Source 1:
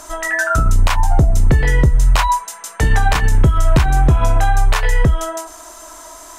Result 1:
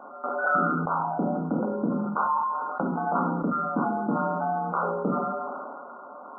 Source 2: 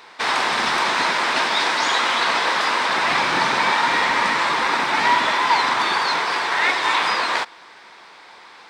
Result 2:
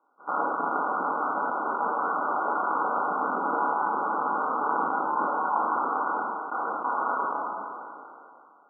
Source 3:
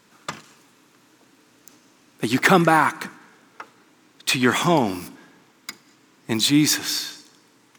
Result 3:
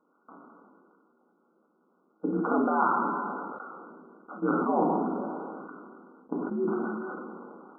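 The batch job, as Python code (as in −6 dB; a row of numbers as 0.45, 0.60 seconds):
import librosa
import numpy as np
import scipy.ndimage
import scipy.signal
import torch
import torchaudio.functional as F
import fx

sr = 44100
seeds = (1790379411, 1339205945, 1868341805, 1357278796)

y = fx.level_steps(x, sr, step_db=21)
y = y * np.sin(2.0 * np.pi * 76.0 * np.arange(len(y)) / sr)
y = fx.brickwall_bandpass(y, sr, low_hz=170.0, high_hz=1500.0)
y = fx.rev_double_slope(y, sr, seeds[0], early_s=0.55, late_s=1.7, knee_db=-23, drr_db=1.5)
y = fx.sustainer(y, sr, db_per_s=23.0)
y = y * 10.0 ** (-12 / 20.0) / np.max(np.abs(y))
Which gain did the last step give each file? +3.0, −3.0, −3.0 decibels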